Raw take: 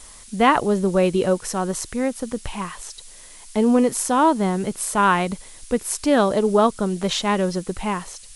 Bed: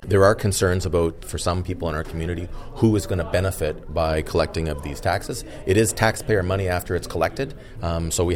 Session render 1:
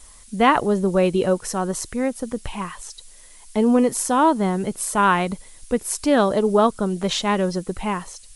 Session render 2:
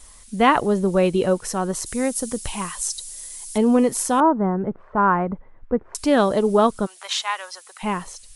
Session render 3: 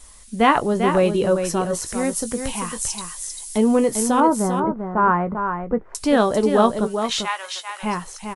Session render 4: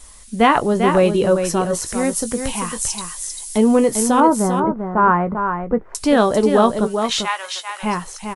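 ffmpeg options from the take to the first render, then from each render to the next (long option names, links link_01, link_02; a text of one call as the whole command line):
ffmpeg -i in.wav -af "afftdn=noise_reduction=6:noise_floor=-44" out.wav
ffmpeg -i in.wav -filter_complex "[0:a]asettb=1/sr,asplit=3[link_01][link_02][link_03];[link_01]atrim=end=1.864[link_04];[link_02]atrim=start=1.86:end=3.58,asetpts=PTS-STARTPTS,afade=type=in:duration=0.004:curve=qsin,afade=type=out:start_time=1.716:duration=0.004:curve=qsin,bass=frequency=250:gain=0,treble=frequency=4000:gain=13[link_05];[link_03]atrim=start=3.576[link_06];[link_04][link_05]acrossfade=duration=0.004:curve1=hsin:curve2=qsin[link_07];[link_07][link_06]acrossfade=duration=0.004:curve1=qsin:curve2=hsin,asettb=1/sr,asplit=3[link_08][link_09][link_10];[link_08]atrim=end=4.204[link_11];[link_09]atrim=start=4.2:end=5.95,asetpts=PTS-STARTPTS,afade=type=in:duration=0.004:curve=qsin,afade=type=out:start_time=1.746:duration=0.004:curve=qsin,lowpass=frequency=1500:width=0.5412,lowpass=frequency=1500:width=1.3066[link_12];[link_10]atrim=start=5.946[link_13];[link_11][link_12]acrossfade=duration=0.004:curve1=hsin:curve2=qsin[link_14];[link_14][link_13]acrossfade=duration=0.004:curve1=qsin:curve2=hsin,asplit=3[link_15][link_16][link_17];[link_15]afade=type=out:start_time=6.85:duration=0.02[link_18];[link_16]highpass=frequency=890:width=0.5412,highpass=frequency=890:width=1.3066,afade=type=in:start_time=6.85:duration=0.02,afade=type=out:start_time=7.82:duration=0.02[link_19];[link_17]afade=type=in:start_time=7.82:duration=0.02[link_20];[link_18][link_19][link_20]amix=inputs=3:normalize=0" out.wav
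ffmpeg -i in.wav -filter_complex "[0:a]asplit=2[link_01][link_02];[link_02]adelay=18,volume=-11dB[link_03];[link_01][link_03]amix=inputs=2:normalize=0,asplit=2[link_04][link_05];[link_05]aecho=0:1:395:0.447[link_06];[link_04][link_06]amix=inputs=2:normalize=0" out.wav
ffmpeg -i in.wav -af "volume=3dB,alimiter=limit=-3dB:level=0:latency=1" out.wav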